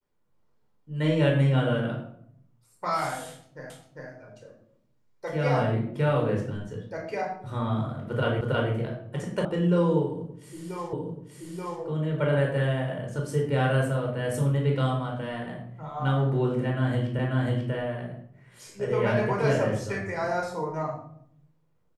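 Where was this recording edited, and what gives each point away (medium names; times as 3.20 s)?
3.70 s: repeat of the last 0.4 s
8.41 s: repeat of the last 0.32 s
9.45 s: sound stops dead
10.93 s: repeat of the last 0.88 s
17.19 s: repeat of the last 0.54 s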